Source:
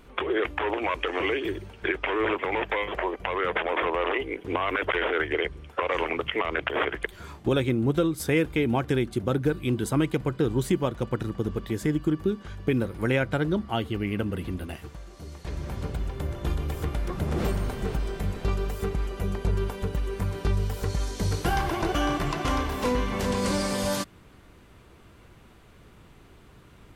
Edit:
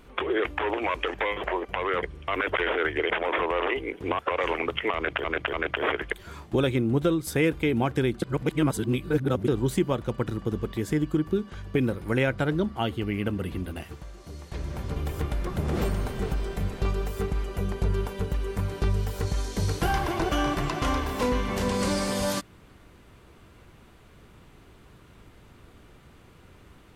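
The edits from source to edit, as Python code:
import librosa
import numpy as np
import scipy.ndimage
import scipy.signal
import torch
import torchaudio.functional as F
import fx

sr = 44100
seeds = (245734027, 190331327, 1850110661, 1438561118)

y = fx.edit(x, sr, fx.cut(start_s=1.14, length_s=1.51),
    fx.swap(start_s=3.54, length_s=1.09, other_s=5.45, other_length_s=0.25),
    fx.repeat(start_s=6.46, length_s=0.29, count=3),
    fx.reverse_span(start_s=9.15, length_s=1.26),
    fx.cut(start_s=15.89, length_s=0.7), tone=tone)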